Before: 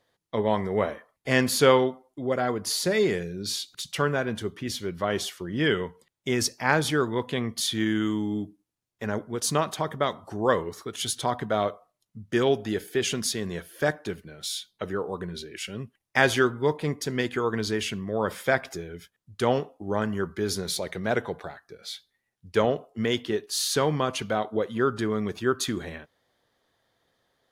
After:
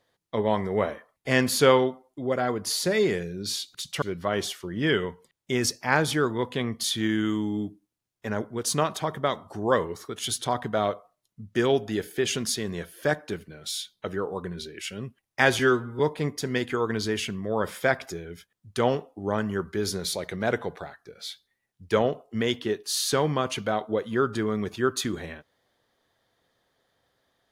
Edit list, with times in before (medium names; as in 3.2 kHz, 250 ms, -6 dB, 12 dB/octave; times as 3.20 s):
4.02–4.79 s: delete
16.36–16.63 s: stretch 1.5×